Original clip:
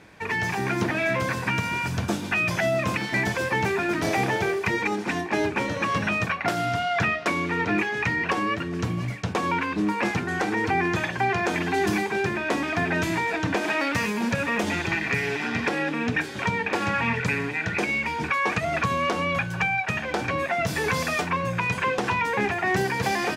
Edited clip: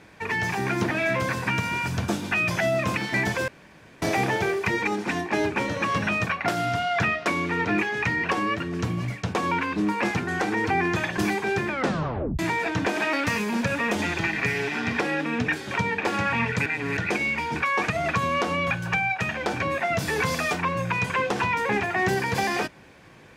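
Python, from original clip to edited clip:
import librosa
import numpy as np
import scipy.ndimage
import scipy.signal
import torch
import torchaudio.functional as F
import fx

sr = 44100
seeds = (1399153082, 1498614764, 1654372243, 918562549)

y = fx.edit(x, sr, fx.room_tone_fill(start_s=3.48, length_s=0.54),
    fx.cut(start_s=11.18, length_s=0.68),
    fx.tape_stop(start_s=12.37, length_s=0.7),
    fx.reverse_span(start_s=17.34, length_s=0.31), tone=tone)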